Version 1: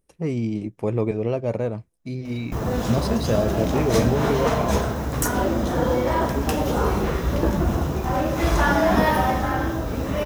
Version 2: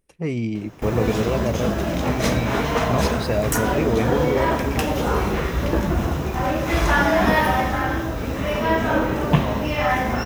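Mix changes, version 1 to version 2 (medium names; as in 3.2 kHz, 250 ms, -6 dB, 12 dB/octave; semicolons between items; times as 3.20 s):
background: entry -1.70 s; master: add peaking EQ 2.3 kHz +6 dB 1.2 oct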